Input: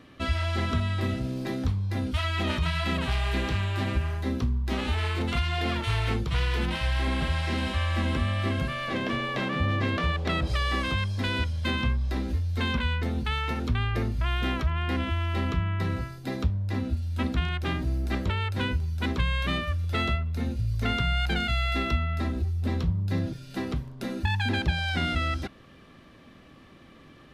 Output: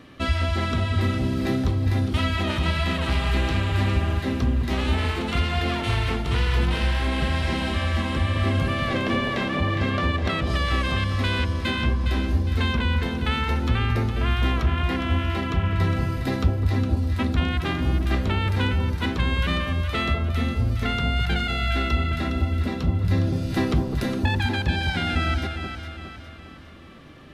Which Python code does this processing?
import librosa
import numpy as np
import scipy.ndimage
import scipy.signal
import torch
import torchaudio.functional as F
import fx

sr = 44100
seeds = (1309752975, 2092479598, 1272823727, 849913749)

y = fx.rider(x, sr, range_db=10, speed_s=0.5)
y = fx.echo_alternate(y, sr, ms=205, hz=1000.0, feedback_pct=68, wet_db=-4.5)
y = y * 10.0 ** (3.0 / 20.0)